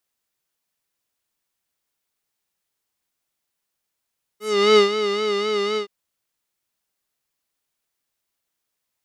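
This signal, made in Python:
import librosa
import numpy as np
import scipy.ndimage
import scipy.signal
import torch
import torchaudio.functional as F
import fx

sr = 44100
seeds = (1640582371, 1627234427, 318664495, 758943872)

y = fx.sub_patch_vibrato(sr, seeds[0], note=68, wave='square', wave2='saw', interval_st=0, detune_cents=16, level2_db=-9.0, sub_db=-13.0, noise_db=-30.0, kind='lowpass', cutoff_hz=4000.0, q=1.7, env_oct=2.0, env_decay_s=0.15, env_sustain_pct=5, attack_ms=365.0, decay_s=0.12, sustain_db=-10.0, release_s=0.1, note_s=1.37, lfo_hz=3.9, vibrato_cents=65)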